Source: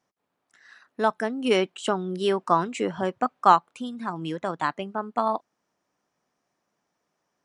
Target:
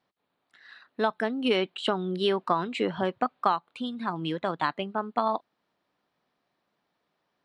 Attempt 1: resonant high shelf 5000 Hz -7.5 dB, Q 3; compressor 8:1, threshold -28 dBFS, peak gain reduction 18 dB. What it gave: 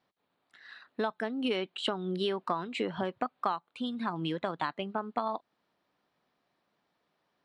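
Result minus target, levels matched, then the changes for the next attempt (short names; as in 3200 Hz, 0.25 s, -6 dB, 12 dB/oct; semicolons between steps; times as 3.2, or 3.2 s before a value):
compressor: peak gain reduction +7 dB
change: compressor 8:1, threshold -20 dBFS, peak gain reduction 11 dB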